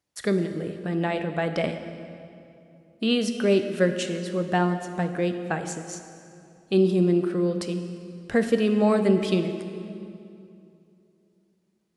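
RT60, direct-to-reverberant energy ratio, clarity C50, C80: 2.7 s, 7.0 dB, 8.5 dB, 9.0 dB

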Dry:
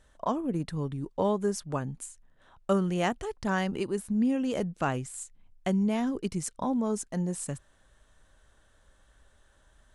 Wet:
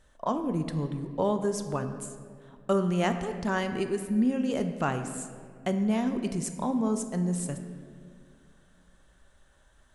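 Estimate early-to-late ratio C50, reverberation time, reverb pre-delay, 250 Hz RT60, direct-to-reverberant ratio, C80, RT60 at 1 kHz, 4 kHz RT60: 9.0 dB, 2.2 s, 5 ms, 2.8 s, 7.0 dB, 9.5 dB, 1.8 s, 1.3 s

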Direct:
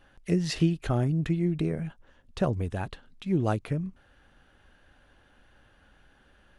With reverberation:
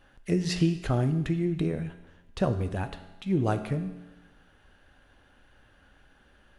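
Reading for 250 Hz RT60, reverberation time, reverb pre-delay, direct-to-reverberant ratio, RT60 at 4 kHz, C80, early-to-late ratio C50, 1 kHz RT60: 1.1 s, 1.1 s, 5 ms, 8.5 dB, 1.1 s, 13.0 dB, 11.5 dB, 1.1 s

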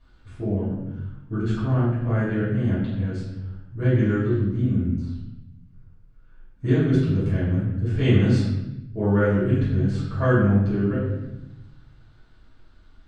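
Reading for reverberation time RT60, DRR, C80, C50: 0.90 s, −12.0 dB, 3.5 dB, 0.5 dB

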